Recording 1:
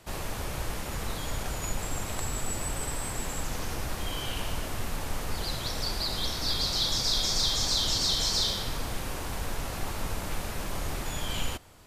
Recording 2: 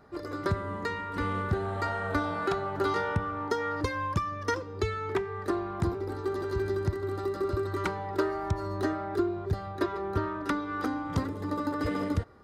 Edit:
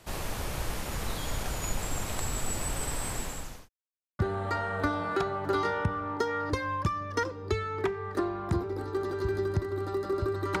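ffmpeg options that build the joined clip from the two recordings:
-filter_complex "[0:a]apad=whole_dur=10.6,atrim=end=10.6,asplit=2[a][b];[a]atrim=end=3.69,asetpts=PTS-STARTPTS,afade=t=out:st=3.13:d=0.56[c];[b]atrim=start=3.69:end=4.19,asetpts=PTS-STARTPTS,volume=0[d];[1:a]atrim=start=1.5:end=7.91,asetpts=PTS-STARTPTS,afade=t=in:d=0.004:c=hsin[e];[c][d][e]concat=n=3:v=0:a=1"

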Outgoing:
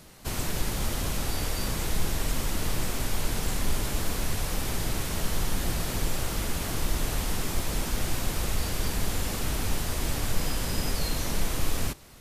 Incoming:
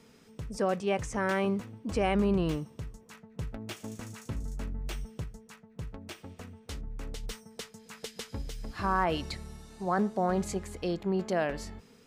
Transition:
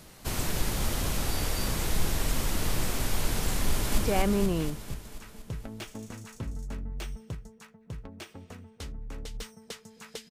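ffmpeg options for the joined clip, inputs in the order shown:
-filter_complex "[0:a]apad=whole_dur=10.3,atrim=end=10.3,atrim=end=3.982[a];[1:a]atrim=start=1.868:end=8.19[b];[a][b]acrossfade=d=0.004:c1=hsin:c2=hsin,asplit=2[c][d];[d]afade=t=in:st=3.67:d=0.01,afade=t=out:st=3.98:d=0.01,aecho=0:1:240|480|720|960|1200|1440|1680|1920|2160|2400|2640:0.794328|0.516313|0.335604|0.218142|0.141793|0.0921652|0.0599074|0.0389398|0.0253109|0.0164521|0.0106938[e];[c][e]amix=inputs=2:normalize=0"

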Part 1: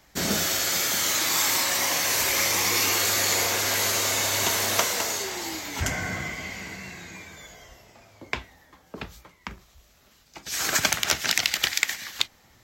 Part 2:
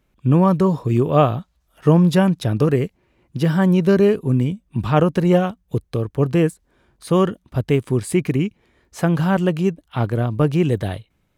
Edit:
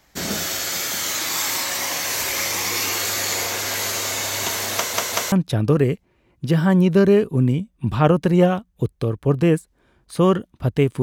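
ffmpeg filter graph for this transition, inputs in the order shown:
-filter_complex "[0:a]apad=whole_dur=11.02,atrim=end=11.02,asplit=3[a][b][c];[a]atrim=end=4.942[d];[b]atrim=start=4.748:end=4.942[e];[c]atrim=start=4.748:end=4.942[f];[1:a]atrim=start=2.238:end=7.94[g];[d][e]acrossfade=d=0.004:c1=hsin:c2=hsin[h];[h][f]acrossfade=d=0.004:c1=hsin:c2=hsin[i];[i][g]acrossfade=d=0.004:c1=hsin:c2=hsin"

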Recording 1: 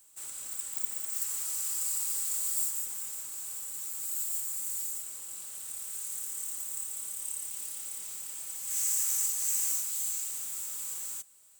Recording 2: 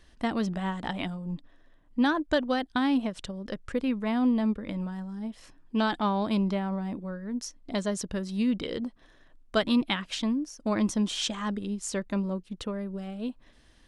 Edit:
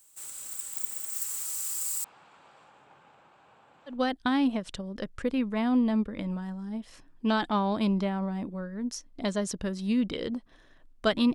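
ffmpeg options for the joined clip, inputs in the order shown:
-filter_complex "[0:a]asettb=1/sr,asplit=3[a][b][c];[a]atrim=end=2.044[d];[b]atrim=start=2.04:end=4,asetpts=PTS-STARTPTS,afade=t=in:d=0.004:c=qsin,afade=t=out:st=1.956:d=0.004:c=qsin,highpass=100,equalizer=f=150:t=q:w=4:g=5,equalizer=f=550:t=q:w=4:g=4,equalizer=f=830:t=q:w=4:g=9,equalizer=f=2k:t=q:w=4:g=-8,lowpass=f=2.4k:w=0.5412,lowpass=f=2.4k:w=1.3066[e];[c]atrim=start=3.996[f];[d][e]acrossfade=d=0.004:c1=hsin:c2=qsin[g];[g][f]acrossfade=d=0.004:c1=qsin:c2=hsin,apad=whole_dur=11.34,atrim=end=11.34,atrim=end=4,asetpts=PTS-STARTPTS[h];[1:a]atrim=start=2.36:end=9.84,asetpts=PTS-STARTPTS[i];[h][i]acrossfade=d=0.14:c1=tri:c2=tri"

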